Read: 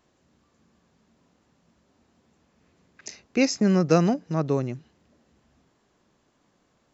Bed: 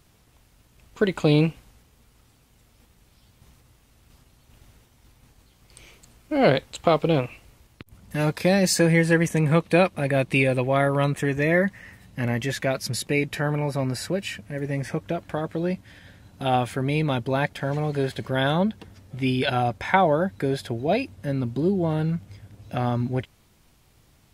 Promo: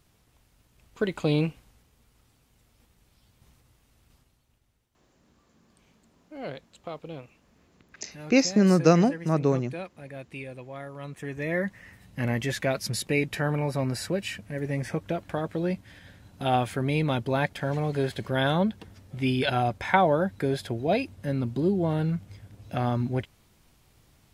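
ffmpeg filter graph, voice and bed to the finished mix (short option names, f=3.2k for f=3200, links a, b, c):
-filter_complex "[0:a]adelay=4950,volume=1dB[a];[1:a]volume=11dB,afade=t=out:st=4.02:d=0.59:silence=0.223872,afade=t=in:st=10.99:d=1.27:silence=0.149624[b];[a][b]amix=inputs=2:normalize=0"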